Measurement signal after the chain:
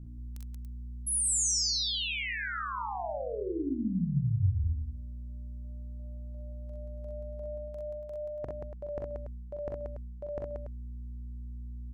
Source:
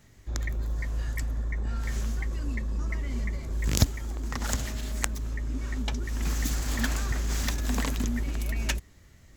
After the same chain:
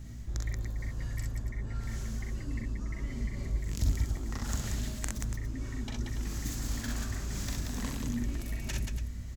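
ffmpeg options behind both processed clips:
-filter_complex "[0:a]bandreject=f=81.44:t=h:w=4,bandreject=f=162.88:t=h:w=4,bandreject=f=244.32:t=h:w=4,aeval=exprs='val(0)+0.00282*(sin(2*PI*60*n/s)+sin(2*PI*2*60*n/s)/2+sin(2*PI*3*60*n/s)/3+sin(2*PI*4*60*n/s)/4+sin(2*PI*5*60*n/s)/5)':c=same,highshelf=f=5k:g=-9,areverse,acompressor=threshold=-38dB:ratio=6,areverse,bass=f=250:g=9,treble=f=4k:g=10,asplit=2[a][b];[b]aecho=0:1:42|45|63|181|285:0.562|0.224|0.668|0.596|0.282[c];[a][c]amix=inputs=2:normalize=0"

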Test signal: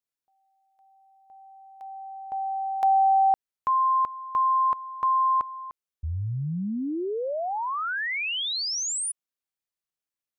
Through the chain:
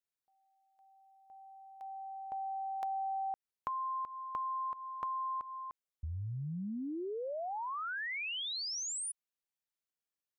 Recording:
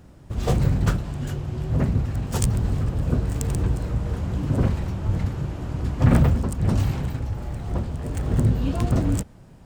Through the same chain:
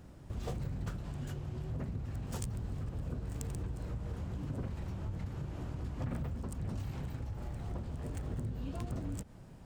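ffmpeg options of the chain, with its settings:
-af "acompressor=threshold=-33dB:ratio=4:attack=14:release=212:knee=6:detection=peak,volume=-5dB"

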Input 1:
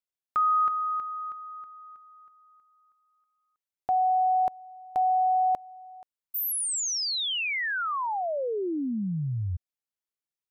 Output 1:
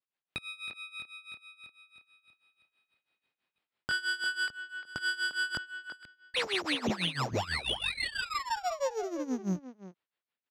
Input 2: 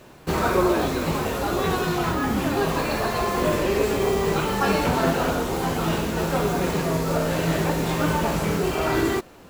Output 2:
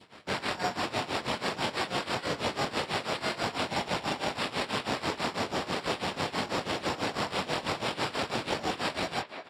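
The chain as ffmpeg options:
-filter_complex "[0:a]asplit=2[a][b];[b]adelay=22,volume=-2dB[c];[a][c]amix=inputs=2:normalize=0,aeval=exprs='abs(val(0))':c=same,dynaudnorm=f=210:g=9:m=7dB,acrusher=samples=7:mix=1:aa=0.000001,highshelf=f=2.7k:g=9.5,acompressor=threshold=-16dB:ratio=6:attack=1:release=144:knee=6:detection=rms,highpass=110,lowpass=4.2k,tremolo=f=6.1:d=0.87,asplit=2[d][e];[e]adelay=350,highpass=300,lowpass=3.4k,asoftclip=type=hard:threshold=-19.5dB,volume=-9dB[f];[d][f]amix=inputs=2:normalize=0,adynamicequalizer=threshold=0.00794:dfrequency=1600:dqfactor=1.2:tfrequency=1600:tqfactor=1.2:attack=5:release=100:ratio=0.375:range=2:mode=cutabove:tftype=bell"

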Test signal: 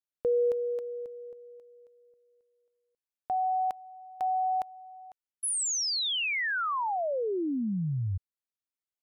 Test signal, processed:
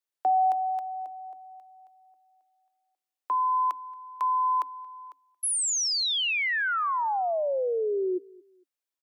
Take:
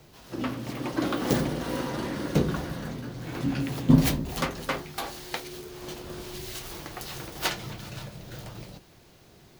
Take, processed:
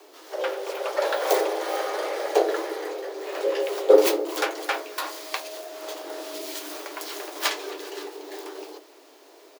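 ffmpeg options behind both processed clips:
-filter_complex "[0:a]afreqshift=270,asplit=2[a][b];[b]adelay=227,lowpass=f=3.2k:p=1,volume=-23.5dB,asplit=2[c][d];[d]adelay=227,lowpass=f=3.2k:p=1,volume=0.32[e];[c][e]amix=inputs=2:normalize=0[f];[a][f]amix=inputs=2:normalize=0,volume=3dB"

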